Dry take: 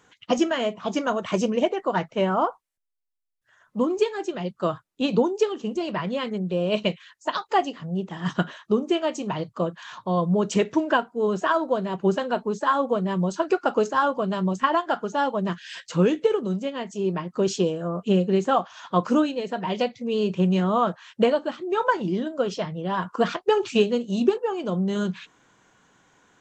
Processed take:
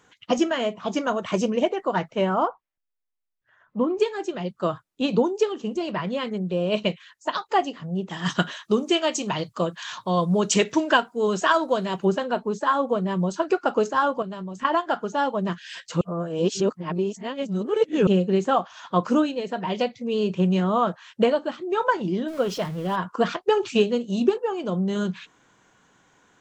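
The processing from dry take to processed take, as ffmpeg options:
-filter_complex "[0:a]asettb=1/sr,asplit=3[s0][s1][s2];[s0]atrim=end=2.484[s3];[s1]atrim=start=2.48:end=4,asetpts=PTS-STARTPTS,afade=t=in:d=0.004:c=qsin,afade=t=out:st=1.516:d=0.004:c=qsin,lowpass=2700[s4];[s2]atrim=start=3.996[s5];[s3][s4]acrossfade=d=0.004:c1=hsin:c2=qsin[s6];[s6][s5]acrossfade=d=0.004:c1=qsin:c2=hsin,asettb=1/sr,asplit=3[s7][s8][s9];[s7]atrim=end=8.094[s10];[s8]atrim=start=8.09:end=12.05,asetpts=PTS-STARTPTS,afade=t=in:d=0.004:c=qsin,afade=t=out:st=3.956:d=0.004:c=qsin,highshelf=f=2100:g=11.5[s11];[s9]atrim=start=12.046[s12];[s10][s11]acrossfade=d=0.004:c1=hsin:c2=qsin[s13];[s13][s12]acrossfade=d=0.004:c1=qsin:c2=hsin,asettb=1/sr,asplit=3[s14][s15][s16];[s14]atrim=end=14.224[s17];[s15]atrim=start=14.22:end=14.65,asetpts=PTS-STARTPTS,afade=t=in:d=0.004:c=qsin,afade=t=out:st=0.426:d=0.004:c=qsin,acompressor=threshold=0.0282:ratio=6:attack=3.2:release=140:knee=1:detection=peak[s18];[s16]atrim=start=14.646[s19];[s17][s18]acrossfade=d=0.004:c1=hsin:c2=qsin[s20];[s20][s19]acrossfade=d=0.004:c1=qsin:c2=hsin,asettb=1/sr,asplit=3[s21][s22][s23];[s21]atrim=end=22.284[s24];[s22]atrim=start=22.28:end=22.96,asetpts=PTS-STARTPTS,afade=t=in:d=0.004:c=qsin,afade=t=out:st=0.676:d=0.004:c=qsin,aeval=exprs='val(0)+0.5*0.0141*sgn(val(0))':c=same[s25];[s23]atrim=start=22.956[s26];[s24][s25]acrossfade=d=0.004:c1=hsin:c2=qsin[s27];[s27][s26]acrossfade=d=0.004:c1=qsin:c2=hsin,asplit=3[s28][s29][s30];[s28]atrim=end=16.012[s31];[s29]atrim=start=16.008:end=18.072,asetpts=PTS-STARTPTS,areverse[s32];[s30]atrim=start=18.068[s33];[s31][s32]acrossfade=d=0.004:c1=hsin:c2=hsin[s34];[s34][s33]acrossfade=d=0.004:c1=hsin:c2=hsin"

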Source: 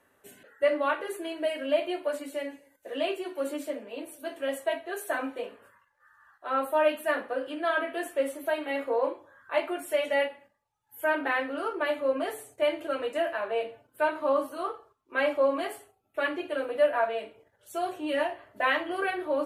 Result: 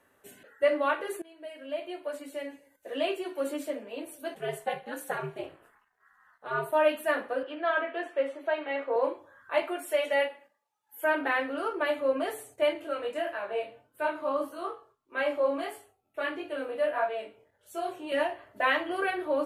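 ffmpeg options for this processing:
-filter_complex "[0:a]asplit=3[s0][s1][s2];[s0]afade=t=out:st=4.34:d=0.02[s3];[s1]aeval=exprs='val(0)*sin(2*PI*120*n/s)':c=same,afade=t=in:st=4.34:d=0.02,afade=t=out:st=6.71:d=0.02[s4];[s2]afade=t=in:st=6.71:d=0.02[s5];[s3][s4][s5]amix=inputs=3:normalize=0,asettb=1/sr,asplit=3[s6][s7][s8];[s6]atrim=end=7.434[s9];[s7]atrim=start=7.43:end=8.96,asetpts=PTS-STARTPTS,afade=t=in:d=0.004:c=qsin,afade=t=out:st=1.526:d=0.004:c=qsin,highpass=350,lowpass=3200[s10];[s8]atrim=start=8.956[s11];[s9][s10]acrossfade=d=0.004:c1=hsin:c2=qsin[s12];[s12][s11]acrossfade=d=0.004:c1=qsin:c2=hsin,asettb=1/sr,asplit=3[s13][s14][s15];[s13]atrim=end=9.624[s16];[s14]atrim=start=9.62:end=11.03,asetpts=PTS-STARTPTS,afade=t=in:d=0.004:c=qsin,afade=t=out:st=1.406:d=0.004:c=qsin,highpass=300[s17];[s15]atrim=start=11.026[s18];[s16][s17]acrossfade=d=0.004:c1=hsin:c2=qsin[s19];[s19][s18]acrossfade=d=0.004:c1=qsin:c2=hsin,asettb=1/sr,asplit=3[s20][s21][s22];[s20]atrim=end=12.734[s23];[s21]atrim=start=12.73:end=18.12,asetpts=PTS-STARTPTS,afade=t=in:d=0.004:c=qsin,afade=t=out:st=5.386:d=0.004:c=qsin,flanger=delay=20:depth=5.1:speed=1.6[s24];[s22]atrim=start=18.116[s25];[s23][s24]acrossfade=d=0.004:c1=hsin:c2=qsin[s26];[s26][s25]acrossfade=d=0.004:c1=qsin:c2=hsin,asplit=2[s27][s28];[s27]atrim=end=1.22,asetpts=PTS-STARTPTS,afade=t=out:st=1.216:d=0.004:c=hsin:silence=0.0841395[s29];[s28]atrim=start=1.22,asetpts=PTS-STARTPTS,afade=t=in:d=1.75:silence=0.0841395[s30];[s29][s30]concat=n=2:v=0:a=1"

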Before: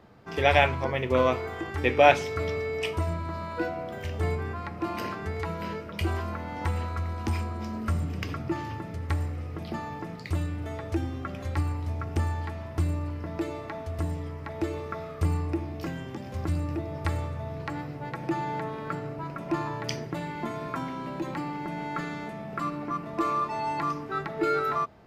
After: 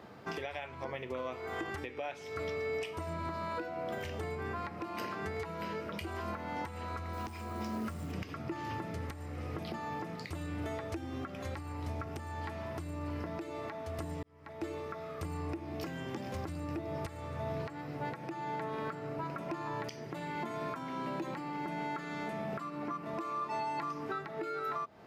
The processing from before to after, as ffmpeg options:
-filter_complex "[0:a]asettb=1/sr,asplit=3[s0][s1][s2];[s0]atrim=end=7.134[s3];[s1]atrim=start=7.13:end=8.12,asetpts=PTS-STARTPTS,afade=t=in:d=0.004:c=qsin,afade=t=out:st=0.986:d=0.004:c=qsin,acrusher=bits=7:mode=log:mix=0:aa=0.000001[s4];[s2]atrim=start=8.116[s5];[s3][s4]acrossfade=d=0.004:c1=hsin:c2=qsin[s6];[s6][s5]acrossfade=d=0.004:c1=qsin:c2=hsin,asplit=2[s7][s8];[s7]atrim=end=14.23,asetpts=PTS-STARTPTS,afade=t=out:st=14.226:d=0.004:c=hsin[s9];[s8]atrim=start=14.23,asetpts=PTS-STARTPTS,afade=t=in:d=1.35[s10];[s9][s10]concat=n=2:v=0:a=1,highpass=f=190:p=1,acompressor=threshold=0.0178:ratio=6,alimiter=level_in=2.66:limit=0.0631:level=0:latency=1:release=498,volume=0.376,volume=1.68"

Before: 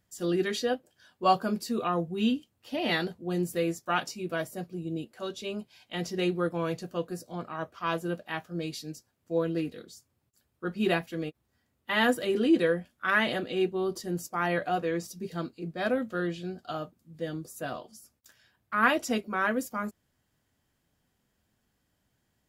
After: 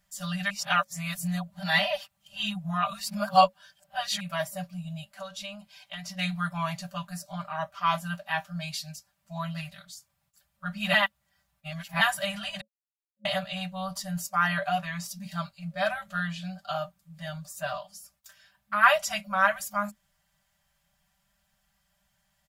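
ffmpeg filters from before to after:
-filter_complex "[0:a]asplit=3[s0][s1][s2];[s0]afade=t=out:st=5.08:d=0.02[s3];[s1]acompressor=threshold=0.0126:ratio=6:attack=3.2:release=140:knee=1:detection=peak,afade=t=in:st=5.08:d=0.02,afade=t=out:st=6.17:d=0.02[s4];[s2]afade=t=in:st=6.17:d=0.02[s5];[s3][s4][s5]amix=inputs=3:normalize=0,asettb=1/sr,asplit=3[s6][s7][s8];[s6]atrim=end=17.384[s9];[s7]atrim=start=17.38:end=17.8,asetpts=PTS-STARTPTS,afade=t=in:d=0.004:c=qsin,afade=t=out:st=0.416:d=0.004:c=qsin,equalizer=f=11000:w=5.5:g=-12[s10];[s8]atrim=start=17.796[s11];[s9][s10]acrossfade=d=0.004:c1=hsin:c2=qsin[s12];[s12][s11]acrossfade=d=0.004:c1=qsin:c2=hsin,asplit=7[s13][s14][s15][s16][s17][s18][s19];[s13]atrim=end=0.502[s20];[s14]atrim=start=0.498:end=4.202,asetpts=PTS-STARTPTS,areverse[s21];[s15]atrim=start=4.198:end=10.942[s22];[s16]atrim=start=10.938:end=12.012,asetpts=PTS-STARTPTS,areverse[s23];[s17]atrim=start=12.008:end=12.61,asetpts=PTS-STARTPTS,afade=t=out:st=0.598:d=0.004:c=hsin[s24];[s18]atrim=start=12.61:end=13.25,asetpts=PTS-STARTPTS,volume=0[s25];[s19]atrim=start=13.25,asetpts=PTS-STARTPTS,afade=t=in:d=0.004:c=hsin[s26];[s20][s21]acrossfade=d=0.004:c1=hsin:c2=hsin[s27];[s27][s22]acrossfade=d=0.004:c1=hsin:c2=hsin[s28];[s28][s23]acrossfade=d=0.004:c1=hsin:c2=hsin[s29];[s24][s25][s26]concat=n=3:v=0:a=1[s30];[s29][s30]acrossfade=d=0.004:c1=hsin:c2=hsin,equalizer=f=220:t=o:w=2.6:g=-6,afftfilt=real='re*(1-between(b*sr/4096,210,550))':imag='im*(1-between(b*sr/4096,210,550))':win_size=4096:overlap=0.75,aecho=1:1:5.1:0.78,volume=1.5"

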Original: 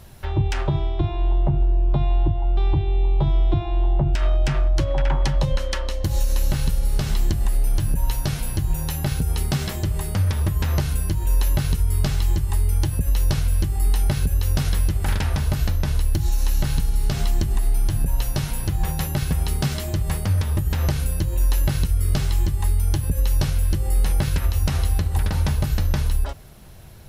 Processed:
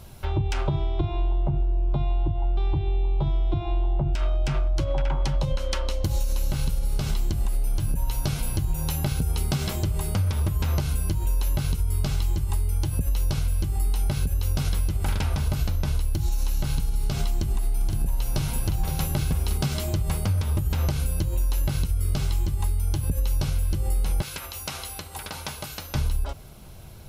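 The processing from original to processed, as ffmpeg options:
-filter_complex "[0:a]asettb=1/sr,asplit=3[s0][s1][s2];[s0]atrim=end=17.294[s3];[s1]atrim=start=17.29:end=19.58,asetpts=PTS-STARTPTS,afade=t=in:d=0.004:c=qsin,afade=t=out:st=2.286:d=0.004:c=qsin,aecho=1:1:516:0.422,atrim=end_sample=100989[s4];[s2]atrim=start=19.576[s5];[s3][s4]acrossfade=d=0.004:c1=hsin:c2=qsin[s6];[s6][s5]acrossfade=d=0.004:c1=qsin:c2=hsin,asettb=1/sr,asplit=3[s7][s8][s9];[s7]atrim=end=24.224[s10];[s8]atrim=start=24.22:end=25.95,asetpts=PTS-STARTPTS,afade=t=in:d=0.004:c=qsin,afade=t=out:st=1.726:d=0.004:c=qsin,highpass=f=940:p=1[s11];[s9]atrim=start=25.946[s12];[s10][s11]acrossfade=d=0.004:c1=hsin:c2=qsin[s13];[s13][s12]acrossfade=d=0.004:c1=qsin:c2=hsin,bandreject=f=1800:w=5.7,acompressor=threshold=0.1:ratio=6"

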